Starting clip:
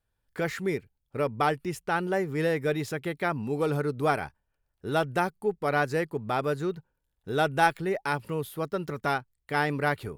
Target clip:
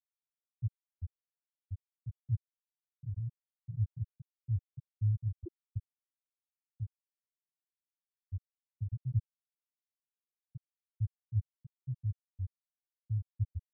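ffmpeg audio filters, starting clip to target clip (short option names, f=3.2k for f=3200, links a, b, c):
-filter_complex "[0:a]alimiter=limit=-18.5dB:level=0:latency=1:release=265,areverse,acompressor=threshold=-43dB:ratio=6,areverse,equalizer=f=140:t=o:w=0.68:g=10,acrossover=split=210[a][b];[a]dynaudnorm=f=280:g=3:m=6.5dB[c];[c][b]amix=inputs=2:normalize=0,acrusher=samples=39:mix=1:aa=0.000001:lfo=1:lforange=23.4:lforate=2,adynamicequalizer=threshold=0.002:dfrequency=610:dqfactor=1.1:tfrequency=610:tqfactor=1.1:attack=5:release=100:ratio=0.375:range=3:mode=boostabove:tftype=bell,asetrate=32667,aresample=44100,afftfilt=real='re*gte(hypot(re,im),0.2)':imag='im*gte(hypot(re,im),0.2)':win_size=1024:overlap=0.75,volume=3.5dB"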